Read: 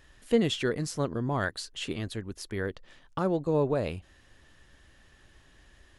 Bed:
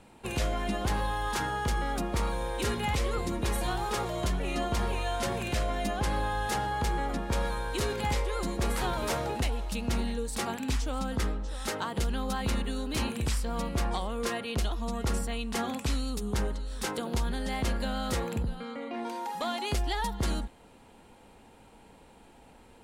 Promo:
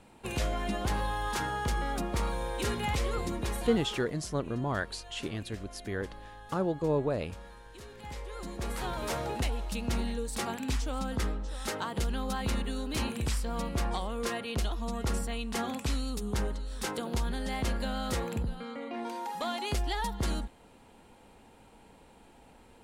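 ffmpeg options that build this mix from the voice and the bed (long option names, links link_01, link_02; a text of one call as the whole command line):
ffmpeg -i stem1.wav -i stem2.wav -filter_complex "[0:a]adelay=3350,volume=-2.5dB[link_01];[1:a]volume=15dB,afade=type=out:start_time=3.25:duration=0.88:silence=0.149624,afade=type=in:start_time=7.92:duration=1.48:silence=0.149624[link_02];[link_01][link_02]amix=inputs=2:normalize=0" out.wav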